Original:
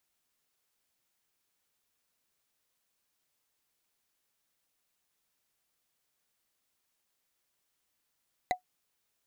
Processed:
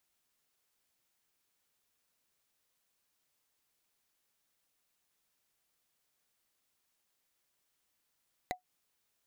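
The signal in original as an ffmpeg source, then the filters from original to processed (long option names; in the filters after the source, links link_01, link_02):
-f lavfi -i "aevalsrc='0.0944*pow(10,-3*t/0.11)*sin(2*PI*732*t)+0.0596*pow(10,-3*t/0.033)*sin(2*PI*2018.1*t)+0.0376*pow(10,-3*t/0.015)*sin(2*PI*3955.7*t)+0.0237*pow(10,-3*t/0.008)*sin(2*PI*6539*t)+0.015*pow(10,-3*t/0.005)*sin(2*PI*9764.9*t)':duration=0.45:sample_rate=44100"
-af "acompressor=threshold=-36dB:ratio=6"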